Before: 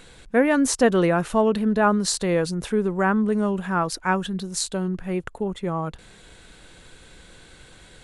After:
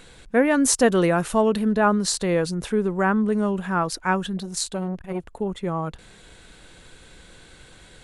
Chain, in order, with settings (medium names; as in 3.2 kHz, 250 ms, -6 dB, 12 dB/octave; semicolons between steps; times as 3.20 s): 0.60–1.72 s: treble shelf 6.7 kHz +8.5 dB; 4.37–5.33 s: transformer saturation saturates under 1.2 kHz